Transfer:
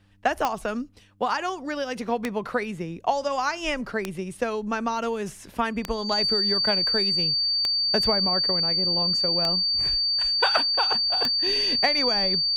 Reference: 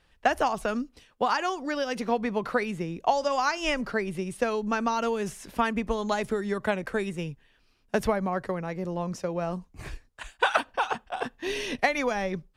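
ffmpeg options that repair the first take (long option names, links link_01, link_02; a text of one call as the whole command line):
ffmpeg -i in.wav -af "adeclick=threshold=4,bandreject=frequency=99.2:width_type=h:width=4,bandreject=frequency=198.4:width_type=h:width=4,bandreject=frequency=297.6:width_type=h:width=4,bandreject=frequency=4600:width=30" out.wav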